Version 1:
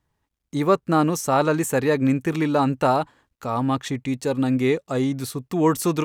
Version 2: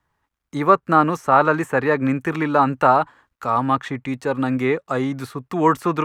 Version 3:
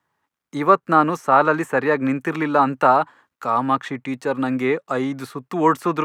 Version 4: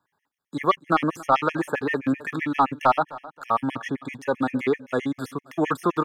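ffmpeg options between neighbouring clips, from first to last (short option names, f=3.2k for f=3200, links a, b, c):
-filter_complex "[0:a]equalizer=f=1.3k:t=o:w=1.7:g=10.5,acrossover=split=230|2900[a][b][c];[c]acompressor=threshold=-43dB:ratio=6[d];[a][b][d]amix=inputs=3:normalize=0,volume=-1.5dB"
-af "highpass=160"
-af "asoftclip=type=tanh:threshold=-8.5dB,aecho=1:1:276|552|828:0.106|0.035|0.0115,afftfilt=real='re*gt(sin(2*PI*7.7*pts/sr)*(1-2*mod(floor(b*sr/1024/1700),2)),0)':imag='im*gt(sin(2*PI*7.7*pts/sr)*(1-2*mod(floor(b*sr/1024/1700),2)),0)':win_size=1024:overlap=0.75"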